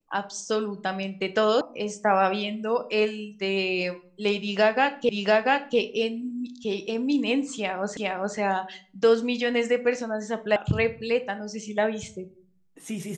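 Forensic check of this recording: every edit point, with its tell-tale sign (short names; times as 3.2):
1.61 sound cut off
5.09 repeat of the last 0.69 s
7.97 repeat of the last 0.41 s
10.56 sound cut off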